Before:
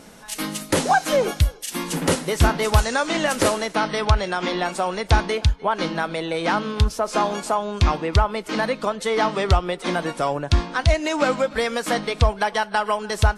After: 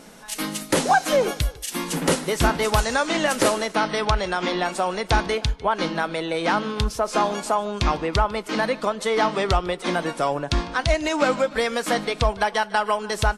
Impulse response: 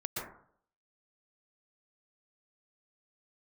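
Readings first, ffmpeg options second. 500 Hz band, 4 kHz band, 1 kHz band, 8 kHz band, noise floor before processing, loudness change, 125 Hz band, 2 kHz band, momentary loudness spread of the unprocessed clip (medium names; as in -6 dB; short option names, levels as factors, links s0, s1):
0.0 dB, 0.0 dB, 0.0 dB, 0.0 dB, -40 dBFS, -1.0 dB, -6.0 dB, 0.0 dB, 5 LU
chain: -filter_complex "[0:a]equalizer=f=81:t=o:w=0.63:g=-13.5,asplit=2[s0][s1];[s1]aecho=0:1:150:0.0794[s2];[s0][s2]amix=inputs=2:normalize=0"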